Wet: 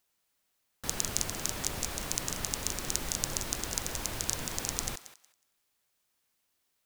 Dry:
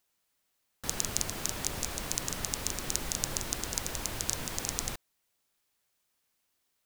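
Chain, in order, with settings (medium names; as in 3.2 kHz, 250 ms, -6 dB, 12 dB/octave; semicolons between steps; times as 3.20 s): thinning echo 183 ms, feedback 21%, high-pass 670 Hz, level -13.5 dB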